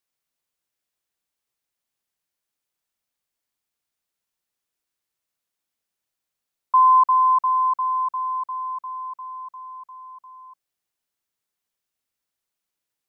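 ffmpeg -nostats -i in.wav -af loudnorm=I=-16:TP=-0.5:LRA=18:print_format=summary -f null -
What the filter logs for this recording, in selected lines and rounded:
Input Integrated:    -19.5 LUFS
Input True Peak:     -10.4 dBTP
Input LRA:            10.9 LU
Input Threshold:     -32.6 LUFS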